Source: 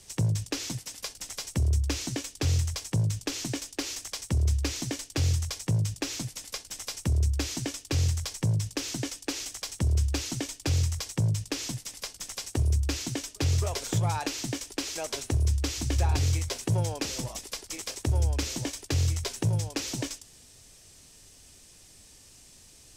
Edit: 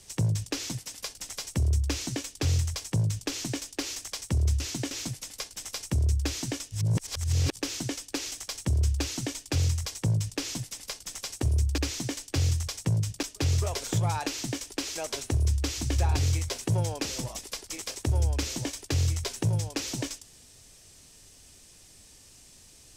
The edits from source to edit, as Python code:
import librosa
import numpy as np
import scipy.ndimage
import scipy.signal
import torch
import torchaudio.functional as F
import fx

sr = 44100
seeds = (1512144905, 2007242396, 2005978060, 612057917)

y = fx.edit(x, sr, fx.swap(start_s=4.6, length_s=1.45, other_s=12.92, other_length_s=0.31),
    fx.reverse_span(start_s=7.85, length_s=0.85), tone=tone)